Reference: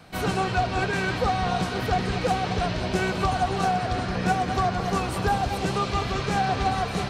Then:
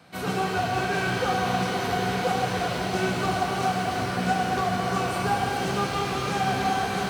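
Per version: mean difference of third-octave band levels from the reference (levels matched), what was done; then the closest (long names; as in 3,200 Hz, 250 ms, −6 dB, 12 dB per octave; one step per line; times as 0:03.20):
4.0 dB: high-pass filter 120 Hz 12 dB per octave
reverb with rising layers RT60 3.2 s, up +12 semitones, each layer −8 dB, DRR −1 dB
level −4 dB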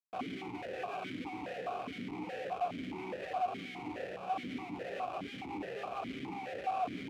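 8.0 dB: comparator with hysteresis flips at −30.5 dBFS
formant filter that steps through the vowels 4.8 Hz
level −2.5 dB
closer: first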